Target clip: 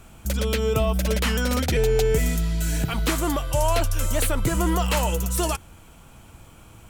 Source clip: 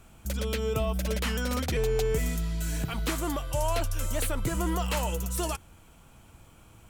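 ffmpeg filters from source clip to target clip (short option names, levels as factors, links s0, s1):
-filter_complex "[0:a]asettb=1/sr,asplit=3[s0][s1][s2];[s0]atrim=end=1.484[s3];[s1]atrim=start=1.48:end=2.89,asetpts=PTS-STARTPTS,afade=t=in:d=0.004:c=qsin,afade=t=out:st=1.406:d=0.004:c=qsin,bandreject=f=1100:w=5.7[s4];[s2]atrim=start=2.886[s5];[s3][s4]acrossfade=d=0.004:c1=hsin:c2=qsin[s6];[s6][s5]acrossfade=d=0.004:c1=qsin:c2=hsin,volume=2.11"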